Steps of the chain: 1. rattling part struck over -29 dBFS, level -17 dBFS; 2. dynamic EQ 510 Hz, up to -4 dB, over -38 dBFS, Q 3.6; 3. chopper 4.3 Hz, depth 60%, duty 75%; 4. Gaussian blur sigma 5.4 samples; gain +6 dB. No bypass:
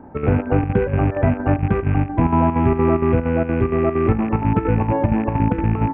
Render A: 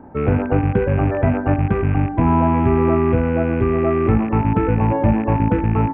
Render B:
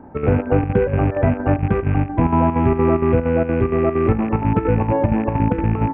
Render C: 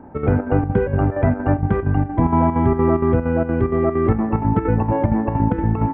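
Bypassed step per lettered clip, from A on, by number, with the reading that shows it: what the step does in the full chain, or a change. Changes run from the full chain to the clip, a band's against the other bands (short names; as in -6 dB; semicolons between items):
3, loudness change +1.0 LU; 2, 500 Hz band +1.5 dB; 1, 2 kHz band -2.0 dB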